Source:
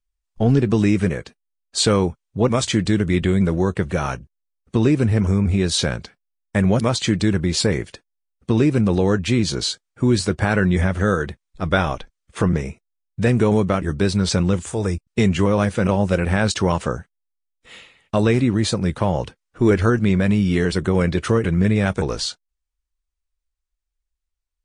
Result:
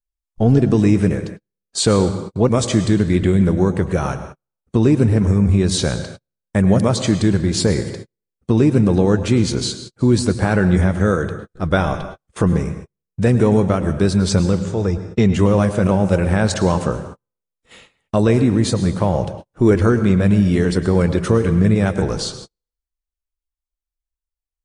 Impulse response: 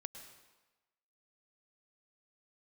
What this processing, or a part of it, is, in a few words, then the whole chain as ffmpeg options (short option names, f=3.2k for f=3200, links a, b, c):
keyed gated reverb: -filter_complex "[0:a]asettb=1/sr,asplit=3[a][b][c];[a]atrim=end=14.514[d];[b]atrim=start=14.51:end=15.34,asetpts=PTS-STARTPTS,afade=t=in:d=0.004:c=qsin,afade=t=out:st=0.826:d=0.004:c=qsin,lowpass=f=5.9k:w=0.5412,lowpass=f=5.9k:w=1.3066[e];[c]atrim=start=15.336[f];[d][e]acrossfade=d=0.004:c1=hsin:c2=qsin[g];[g][f]acrossfade=d=0.004:c1=qsin:c2=hsin,asplit=3[h][i][j];[1:a]atrim=start_sample=2205[k];[i][k]afir=irnorm=-1:irlink=0[l];[j]apad=whole_len=1086885[m];[l][m]sidechaingate=range=-48dB:threshold=-44dB:ratio=16:detection=peak,volume=11dB[n];[h][n]amix=inputs=2:normalize=0,equalizer=f=2.6k:t=o:w=2.1:g=-6,volume=-7dB"